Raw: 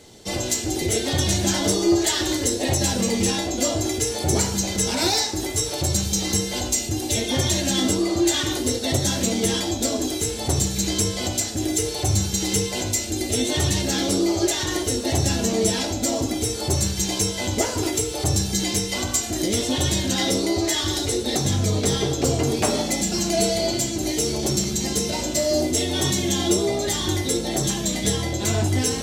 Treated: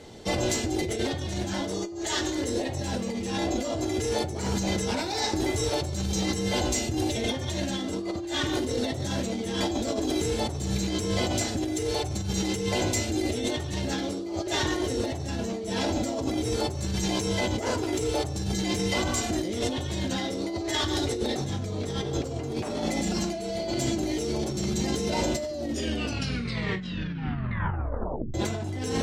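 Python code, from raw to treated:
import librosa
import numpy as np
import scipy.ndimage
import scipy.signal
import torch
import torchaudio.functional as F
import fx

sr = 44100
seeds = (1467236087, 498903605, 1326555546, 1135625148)

y = fx.peak_eq(x, sr, hz=6700.0, db=8.0, octaves=0.38, at=(1.74, 2.35))
y = fx.edit(y, sr, fx.tape_stop(start_s=25.48, length_s=2.86), tone=tone)
y = fx.lowpass(y, sr, hz=2200.0, slope=6)
y = fx.hum_notches(y, sr, base_hz=50, count=8)
y = fx.over_compress(y, sr, threshold_db=-29.0, ratio=-1.0)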